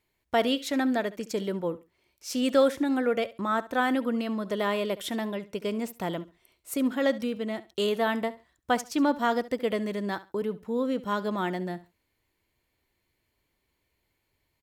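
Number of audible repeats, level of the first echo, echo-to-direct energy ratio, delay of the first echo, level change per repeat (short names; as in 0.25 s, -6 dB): 2, -17.5 dB, -17.5 dB, 69 ms, -13.5 dB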